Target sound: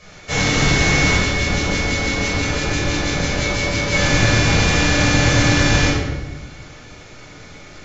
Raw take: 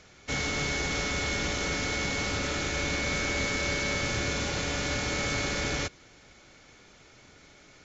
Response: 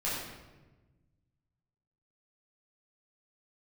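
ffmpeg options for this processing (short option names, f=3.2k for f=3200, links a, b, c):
-filter_complex "[0:a]asettb=1/sr,asplit=3[a][b][c];[a]atrim=end=1.164[d];[b]atrim=start=1.16:end=3.93,asetpts=PTS-STARTPTS,afade=t=in:d=0.004:c=qsin,afade=t=out:st=2.766:d=0.004:c=qsin,acrossover=split=1700[e][f];[e]aeval=exprs='val(0)*(1-1/2+1/2*cos(2*PI*6*n/s))':c=same[g];[f]aeval=exprs='val(0)*(1-1/2-1/2*cos(2*PI*6*n/s))':c=same[h];[g][h]amix=inputs=2:normalize=0[i];[c]atrim=start=3.926[j];[d][i]acrossfade=d=0.004:c1=hsin:c2=qsin[k];[k][j]acrossfade=d=0.004:c1=qsin:c2=hsin[l];[1:a]atrim=start_sample=2205[m];[l][m]afir=irnorm=-1:irlink=0,volume=7.5dB"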